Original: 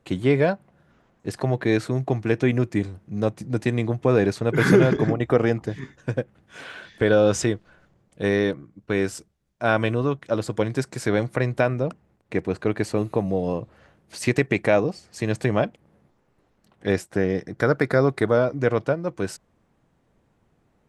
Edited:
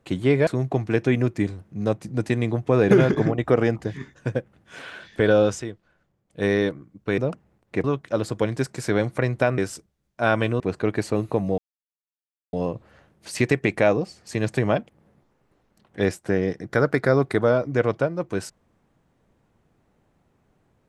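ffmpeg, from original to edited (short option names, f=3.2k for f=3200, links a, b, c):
-filter_complex "[0:a]asplit=10[a][b][c][d][e][f][g][h][i][j];[a]atrim=end=0.472[k];[b]atrim=start=1.828:end=4.272[l];[c]atrim=start=4.728:end=7.42,asetpts=PTS-STARTPTS,afade=t=out:st=2.502:d=0.19:silence=0.316228[m];[d]atrim=start=7.42:end=8.08,asetpts=PTS-STARTPTS,volume=-10dB[n];[e]atrim=start=8.08:end=9.002,asetpts=PTS-STARTPTS,afade=t=in:d=0.19:silence=0.316228[o];[f]atrim=start=11.758:end=12.422[p];[g]atrim=start=10.018:end=11.762[q];[h]atrim=start=8.998:end=10.022[r];[i]atrim=start=12.418:end=13.4,asetpts=PTS-STARTPTS,afade=t=out:st=0.978:d=0.004:c=hsin,apad=pad_dur=0.95[s];[j]atrim=start=13.4,asetpts=PTS-STARTPTS,afade=t=in:d=0.004:c=hsin[t];[k][l]acrossfade=d=0.004:c1=hsin:c2=hsin[u];[m][n][o]concat=n=3:v=0:a=1[v];[u][v]acrossfade=d=0.004:c1=hsin:c2=hsin[w];[w][p]acrossfade=d=0.004:c1=hsin:c2=hsin[x];[x][q]acrossfade=d=0.004:c1=hsin:c2=hsin[y];[y][r]acrossfade=d=0.004:c1=hsin:c2=hsin[z];[s][t]concat=n=2:v=0:a=1[aa];[z][aa]acrossfade=d=0.004:c1=hsin:c2=hsin"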